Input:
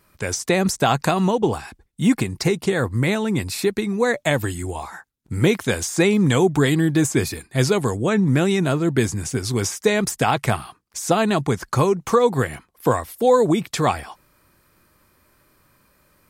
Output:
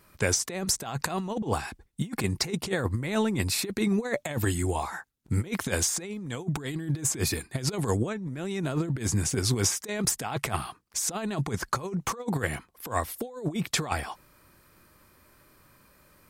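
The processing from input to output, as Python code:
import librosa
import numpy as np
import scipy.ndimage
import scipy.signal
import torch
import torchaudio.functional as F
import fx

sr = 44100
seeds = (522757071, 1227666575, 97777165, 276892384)

y = fx.over_compress(x, sr, threshold_db=-23.0, ratio=-0.5)
y = F.gain(torch.from_numpy(y), -4.5).numpy()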